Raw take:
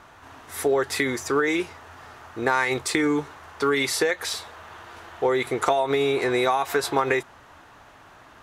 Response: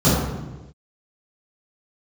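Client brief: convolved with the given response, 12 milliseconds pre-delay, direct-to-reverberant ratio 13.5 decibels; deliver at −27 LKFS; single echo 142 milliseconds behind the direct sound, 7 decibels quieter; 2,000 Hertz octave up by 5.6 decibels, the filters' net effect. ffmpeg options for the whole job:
-filter_complex "[0:a]equalizer=frequency=2000:width_type=o:gain=6.5,aecho=1:1:142:0.447,asplit=2[link_01][link_02];[1:a]atrim=start_sample=2205,adelay=12[link_03];[link_02][link_03]afir=irnorm=-1:irlink=0,volume=-35.5dB[link_04];[link_01][link_04]amix=inputs=2:normalize=0,volume=-6.5dB"

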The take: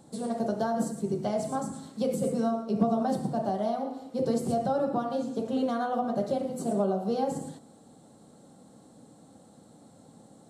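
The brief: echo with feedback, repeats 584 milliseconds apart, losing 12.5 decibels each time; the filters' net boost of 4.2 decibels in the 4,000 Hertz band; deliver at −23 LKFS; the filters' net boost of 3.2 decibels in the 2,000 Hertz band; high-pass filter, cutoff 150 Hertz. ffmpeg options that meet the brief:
ffmpeg -i in.wav -af "highpass=150,equalizer=frequency=2000:width_type=o:gain=4,equalizer=frequency=4000:width_type=o:gain=4,aecho=1:1:584|1168|1752:0.237|0.0569|0.0137,volume=6.5dB" out.wav

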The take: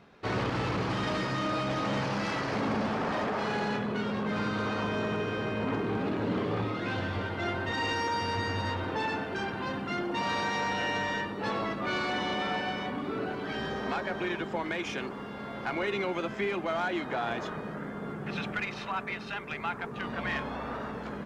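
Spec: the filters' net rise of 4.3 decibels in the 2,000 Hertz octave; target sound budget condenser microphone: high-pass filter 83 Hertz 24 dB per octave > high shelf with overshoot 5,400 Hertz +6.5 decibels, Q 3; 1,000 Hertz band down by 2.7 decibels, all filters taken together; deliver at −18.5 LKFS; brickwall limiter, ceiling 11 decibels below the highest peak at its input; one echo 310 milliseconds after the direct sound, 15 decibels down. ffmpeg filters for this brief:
ffmpeg -i in.wav -af "equalizer=frequency=1000:width_type=o:gain=-5.5,equalizer=frequency=2000:width_type=o:gain=8,alimiter=level_in=4dB:limit=-24dB:level=0:latency=1,volume=-4dB,highpass=frequency=83:width=0.5412,highpass=frequency=83:width=1.3066,highshelf=frequency=5400:width_type=q:width=3:gain=6.5,aecho=1:1:310:0.178,volume=17.5dB" out.wav

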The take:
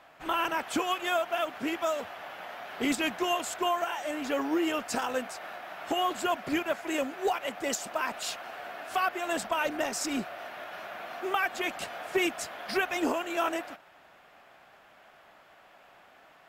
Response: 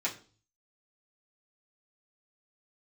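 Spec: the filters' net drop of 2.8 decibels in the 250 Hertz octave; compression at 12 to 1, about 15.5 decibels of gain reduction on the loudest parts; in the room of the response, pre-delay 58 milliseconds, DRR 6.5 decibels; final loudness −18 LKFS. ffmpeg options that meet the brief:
-filter_complex "[0:a]equalizer=frequency=250:width_type=o:gain=-4,acompressor=threshold=-40dB:ratio=12,asplit=2[link_01][link_02];[1:a]atrim=start_sample=2205,adelay=58[link_03];[link_02][link_03]afir=irnorm=-1:irlink=0,volume=-12dB[link_04];[link_01][link_04]amix=inputs=2:normalize=0,volume=24.5dB"

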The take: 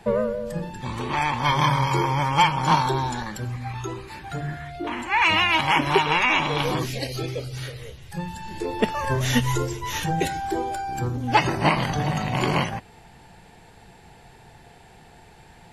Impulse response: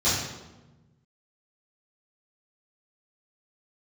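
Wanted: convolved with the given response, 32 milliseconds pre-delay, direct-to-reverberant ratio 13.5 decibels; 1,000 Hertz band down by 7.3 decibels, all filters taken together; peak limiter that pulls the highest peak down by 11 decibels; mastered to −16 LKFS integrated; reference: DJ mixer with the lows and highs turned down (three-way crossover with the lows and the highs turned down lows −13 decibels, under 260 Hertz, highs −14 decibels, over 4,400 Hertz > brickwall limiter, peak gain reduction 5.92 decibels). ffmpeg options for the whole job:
-filter_complex "[0:a]equalizer=frequency=1000:width_type=o:gain=-8.5,alimiter=limit=-18.5dB:level=0:latency=1,asplit=2[link_01][link_02];[1:a]atrim=start_sample=2205,adelay=32[link_03];[link_02][link_03]afir=irnorm=-1:irlink=0,volume=-28dB[link_04];[link_01][link_04]amix=inputs=2:normalize=0,acrossover=split=260 4400:gain=0.224 1 0.2[link_05][link_06][link_07];[link_05][link_06][link_07]amix=inputs=3:normalize=0,volume=17dB,alimiter=limit=-5.5dB:level=0:latency=1"

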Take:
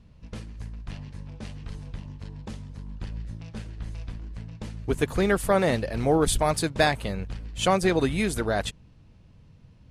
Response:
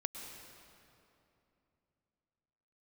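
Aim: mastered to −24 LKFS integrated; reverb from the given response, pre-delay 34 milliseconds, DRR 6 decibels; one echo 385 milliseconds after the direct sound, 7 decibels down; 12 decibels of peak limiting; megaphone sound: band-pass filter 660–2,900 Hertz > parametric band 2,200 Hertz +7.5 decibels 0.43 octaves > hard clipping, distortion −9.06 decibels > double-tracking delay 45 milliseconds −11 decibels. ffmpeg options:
-filter_complex "[0:a]alimiter=limit=-20.5dB:level=0:latency=1,aecho=1:1:385:0.447,asplit=2[link_01][link_02];[1:a]atrim=start_sample=2205,adelay=34[link_03];[link_02][link_03]afir=irnorm=-1:irlink=0,volume=-6dB[link_04];[link_01][link_04]amix=inputs=2:normalize=0,highpass=660,lowpass=2900,equalizer=frequency=2200:width_type=o:width=0.43:gain=7.5,asoftclip=type=hard:threshold=-31.5dB,asplit=2[link_05][link_06];[link_06]adelay=45,volume=-11dB[link_07];[link_05][link_07]amix=inputs=2:normalize=0,volume=13.5dB"

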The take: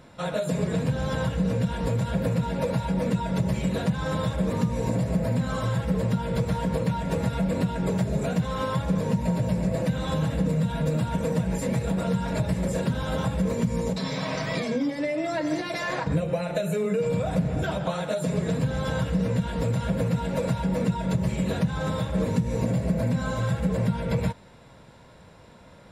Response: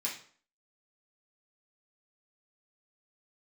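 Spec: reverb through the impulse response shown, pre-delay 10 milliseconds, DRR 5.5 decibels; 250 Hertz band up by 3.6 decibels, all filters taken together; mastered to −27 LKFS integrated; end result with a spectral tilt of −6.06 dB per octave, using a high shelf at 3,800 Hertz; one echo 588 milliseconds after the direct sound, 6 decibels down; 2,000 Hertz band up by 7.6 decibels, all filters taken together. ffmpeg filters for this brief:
-filter_complex "[0:a]equalizer=frequency=250:width_type=o:gain=5.5,equalizer=frequency=2000:width_type=o:gain=8.5,highshelf=frequency=3800:gain=4,aecho=1:1:588:0.501,asplit=2[link_01][link_02];[1:a]atrim=start_sample=2205,adelay=10[link_03];[link_02][link_03]afir=irnorm=-1:irlink=0,volume=-8.5dB[link_04];[link_01][link_04]amix=inputs=2:normalize=0,volume=-4.5dB"

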